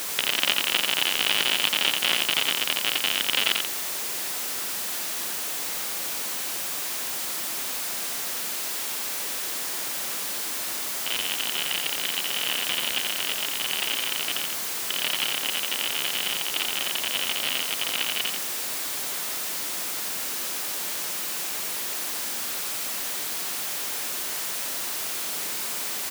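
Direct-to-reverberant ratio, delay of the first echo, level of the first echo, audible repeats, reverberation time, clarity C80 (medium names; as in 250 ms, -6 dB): no reverb, 87 ms, -5.0 dB, 1, no reverb, no reverb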